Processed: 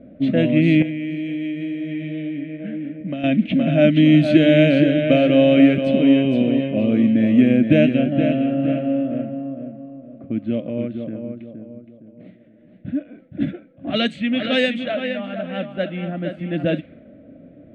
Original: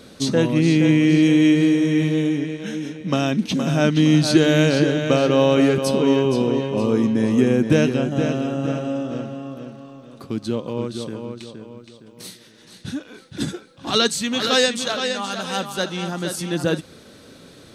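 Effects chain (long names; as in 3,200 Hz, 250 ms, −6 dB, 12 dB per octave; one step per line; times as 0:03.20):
low-pass that shuts in the quiet parts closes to 750 Hz, open at −12 dBFS
drawn EQ curve 130 Hz 0 dB, 290 Hz +7 dB, 420 Hz −9 dB, 630 Hz +10 dB, 910 Hz −19 dB, 2,200 Hz +7 dB, 3,300 Hz 0 dB, 5,300 Hz −25 dB, 8,600 Hz −17 dB
0:00.82–0:03.24: downward compressor 6 to 1, threshold −24 dBFS, peak gain reduction 15 dB
level −1 dB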